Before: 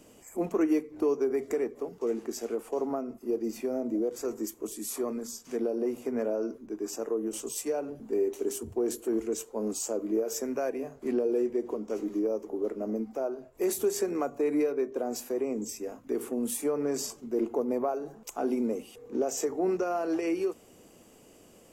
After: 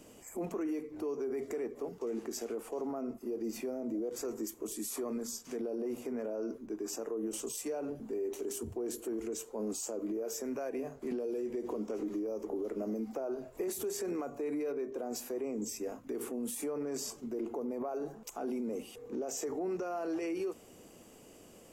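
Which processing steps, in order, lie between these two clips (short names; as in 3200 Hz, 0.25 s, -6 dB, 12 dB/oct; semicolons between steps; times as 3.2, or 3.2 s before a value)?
limiter -29.5 dBFS, peak gain reduction 12 dB; 11.11–13.68 three-band squash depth 100%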